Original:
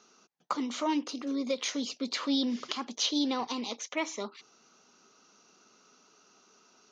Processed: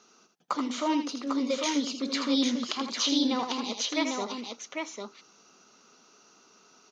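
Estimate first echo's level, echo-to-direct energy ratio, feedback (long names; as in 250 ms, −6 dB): −7.5 dB, −2.5 dB, repeats not evenly spaced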